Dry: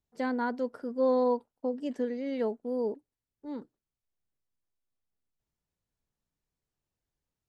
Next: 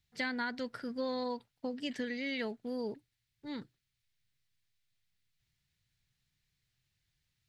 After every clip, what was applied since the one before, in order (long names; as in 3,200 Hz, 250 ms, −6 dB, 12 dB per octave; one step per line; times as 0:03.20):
graphic EQ with 10 bands 125 Hz +10 dB, 250 Hz −7 dB, 500 Hz −9 dB, 1,000 Hz −7 dB, 2,000 Hz +9 dB, 4,000 Hz +9 dB
downward compressor, threshold −36 dBFS, peak gain reduction 6.5 dB
level +4 dB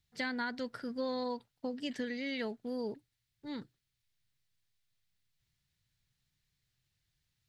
parametric band 2,300 Hz −2.5 dB 0.77 octaves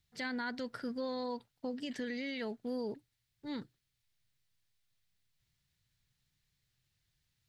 brickwall limiter −30.5 dBFS, peak gain reduction 6 dB
level +1 dB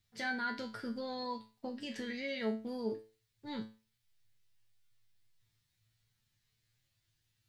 tuned comb filter 110 Hz, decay 0.34 s, harmonics all, mix 90%
level +10.5 dB